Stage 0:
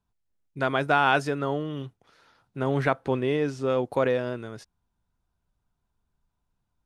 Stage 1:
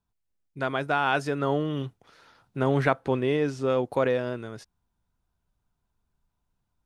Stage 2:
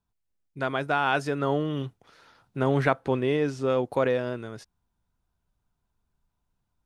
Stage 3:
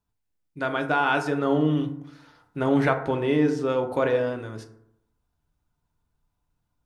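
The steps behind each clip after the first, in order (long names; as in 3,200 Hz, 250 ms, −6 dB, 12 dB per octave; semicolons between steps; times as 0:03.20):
speech leveller 0.5 s
no processing that can be heard
feedback delay network reverb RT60 0.75 s, low-frequency decay 1.1×, high-frequency decay 0.4×, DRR 4.5 dB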